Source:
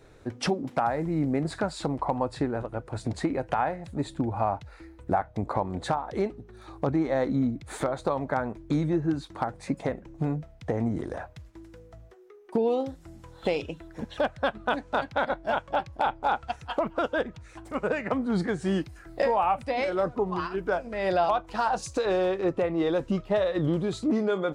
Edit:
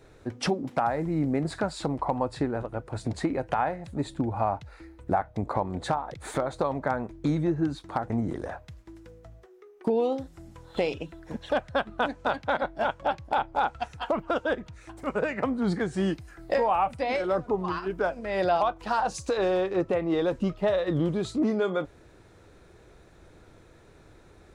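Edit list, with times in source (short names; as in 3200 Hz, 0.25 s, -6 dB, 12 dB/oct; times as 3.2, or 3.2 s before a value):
6.14–7.6 cut
9.56–10.78 cut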